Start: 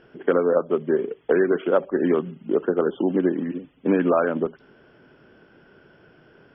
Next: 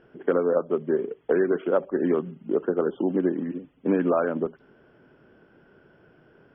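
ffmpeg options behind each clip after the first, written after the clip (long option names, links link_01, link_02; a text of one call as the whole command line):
ffmpeg -i in.wav -af "highshelf=frequency=3000:gain=-11,volume=-2.5dB" out.wav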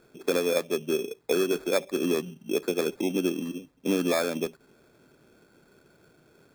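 ffmpeg -i in.wav -af "acrusher=samples=15:mix=1:aa=0.000001,volume=-3dB" out.wav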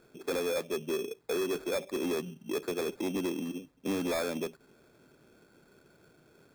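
ffmpeg -i in.wav -af "asoftclip=type=tanh:threshold=-24.5dB,volume=-2dB" out.wav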